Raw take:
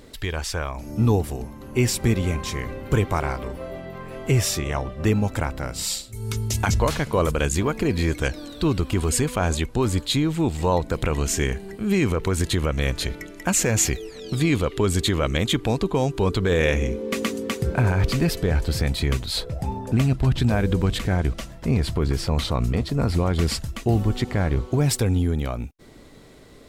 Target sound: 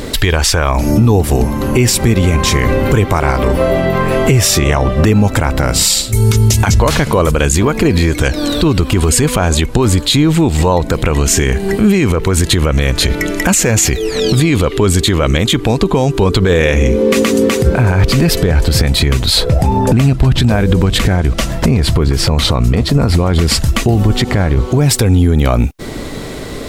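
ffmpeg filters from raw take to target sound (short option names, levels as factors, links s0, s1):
-af "acompressor=threshold=0.0282:ratio=3,alimiter=level_in=16.8:limit=0.891:release=50:level=0:latency=1,volume=0.891"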